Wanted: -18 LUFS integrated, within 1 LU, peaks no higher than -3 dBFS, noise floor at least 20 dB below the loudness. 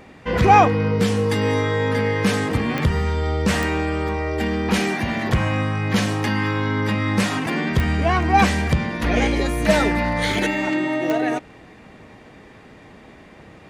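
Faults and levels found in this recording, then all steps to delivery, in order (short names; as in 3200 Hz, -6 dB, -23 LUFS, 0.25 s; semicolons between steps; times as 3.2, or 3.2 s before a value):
clicks 4; loudness -20.5 LUFS; peak -2.0 dBFS; loudness target -18.0 LUFS
-> de-click; gain +2.5 dB; limiter -3 dBFS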